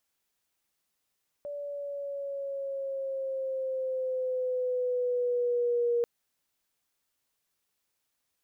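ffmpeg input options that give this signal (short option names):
-f lavfi -i "aevalsrc='pow(10,(-23.5+11*(t/4.59-1))/20)*sin(2*PI*579*4.59/(-3.5*log(2)/12)*(exp(-3.5*log(2)/12*t/4.59)-1))':d=4.59:s=44100"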